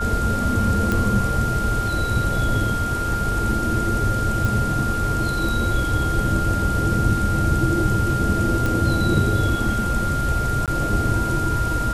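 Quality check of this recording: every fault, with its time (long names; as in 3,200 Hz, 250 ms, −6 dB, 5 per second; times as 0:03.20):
whistle 1,400 Hz −24 dBFS
0:00.92: click −9 dBFS
0:04.45: click
0:08.66: click
0:10.66–0:10.68: drop-out 17 ms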